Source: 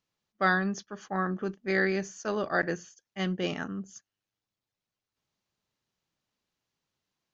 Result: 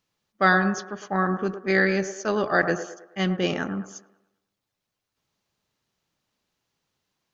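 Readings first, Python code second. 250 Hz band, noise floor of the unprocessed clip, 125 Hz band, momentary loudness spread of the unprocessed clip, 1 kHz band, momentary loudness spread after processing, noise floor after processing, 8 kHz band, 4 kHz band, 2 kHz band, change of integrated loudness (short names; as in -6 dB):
+6.0 dB, under -85 dBFS, +6.0 dB, 12 LU, +6.5 dB, 11 LU, -84 dBFS, n/a, +6.0 dB, +6.0 dB, +6.0 dB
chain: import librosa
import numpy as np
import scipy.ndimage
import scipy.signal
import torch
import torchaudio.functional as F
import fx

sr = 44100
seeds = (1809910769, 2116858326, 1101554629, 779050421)

y = fx.echo_wet_bandpass(x, sr, ms=107, feedback_pct=43, hz=730.0, wet_db=-8)
y = y * 10.0 ** (6.0 / 20.0)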